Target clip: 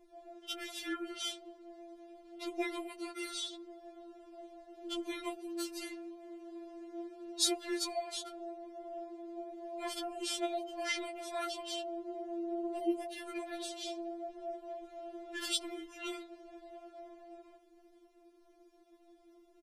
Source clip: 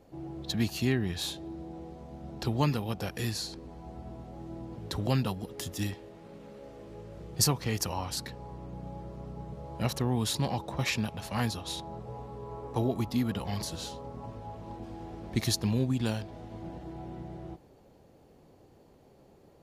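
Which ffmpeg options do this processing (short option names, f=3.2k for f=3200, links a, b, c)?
-af "asetrate=36028,aresample=44100,atempo=1.22405,afftfilt=real='re*4*eq(mod(b,16),0)':imag='im*4*eq(mod(b,16),0)':win_size=2048:overlap=0.75,volume=-1.5dB"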